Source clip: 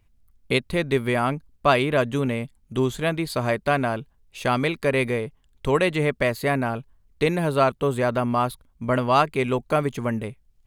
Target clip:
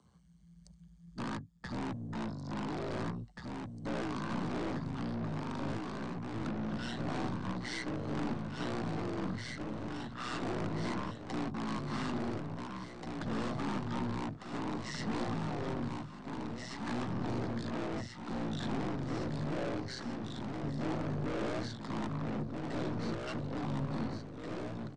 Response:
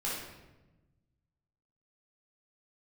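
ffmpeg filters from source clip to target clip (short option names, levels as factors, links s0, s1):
-filter_complex "[0:a]afftfilt=real='re*pow(10,7/40*sin(2*PI*(2*log(max(b,1)*sr/1024/100)/log(2)-(0.58)*(pts-256)/sr)))':imag='im*pow(10,7/40*sin(2*PI*(2*log(max(b,1)*sr/1024/100)/log(2)-(0.58)*(pts-256)/sr)))':win_size=1024:overlap=0.75,bandreject=f=5700:w=5.7,tremolo=f=290:d=0.889,adynamicequalizer=threshold=0.00562:dfrequency=4200:dqfactor=1.8:tfrequency=4200:tqfactor=1.8:attack=5:release=100:ratio=0.375:range=2:mode=cutabove:tftype=bell,asplit=2[s0][s1];[s1]acompressor=threshold=0.0126:ratio=8,volume=1.19[s2];[s0][s2]amix=inputs=2:normalize=0,alimiter=limit=0.251:level=0:latency=1:release=217,acrossover=split=150|3000[s3][s4][s5];[s3]acompressor=threshold=0.0158:ratio=6[s6];[s6][s4][s5]amix=inputs=3:normalize=0,lowshelf=f=120:g=-11.5,afreqshift=110,aeval=exprs='(tanh(63.1*val(0)+0.25)-tanh(0.25))/63.1':c=same,asplit=2[s7][s8];[s8]aecho=0:1:740|1332|1806|2184|2488:0.631|0.398|0.251|0.158|0.1[s9];[s7][s9]amix=inputs=2:normalize=0,asetrate=18846,aresample=44100"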